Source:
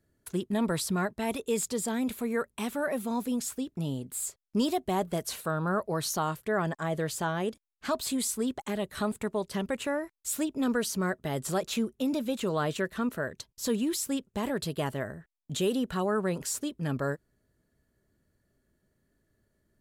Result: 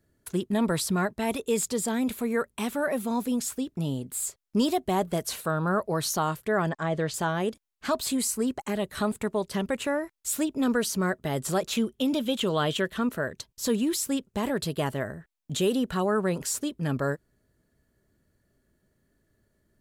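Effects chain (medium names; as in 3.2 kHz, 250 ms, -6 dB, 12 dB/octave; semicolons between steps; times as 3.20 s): 6.69–7.14 s: low-pass 5.8 kHz 12 dB/octave; 8.18–8.74 s: band-stop 3.5 kHz, Q 5.3; 11.77–12.97 s: peaking EQ 3.2 kHz +12 dB 0.27 oct; trim +3 dB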